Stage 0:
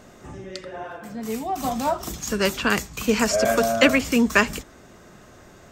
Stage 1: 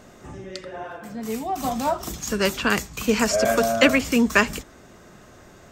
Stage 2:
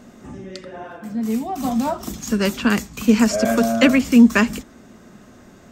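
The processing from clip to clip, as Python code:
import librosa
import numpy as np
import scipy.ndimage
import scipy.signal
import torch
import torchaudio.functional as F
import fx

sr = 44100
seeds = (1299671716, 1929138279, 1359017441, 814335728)

y1 = x
y2 = fx.peak_eq(y1, sr, hz=230.0, db=11.0, octaves=0.64)
y2 = y2 * 10.0 ** (-1.0 / 20.0)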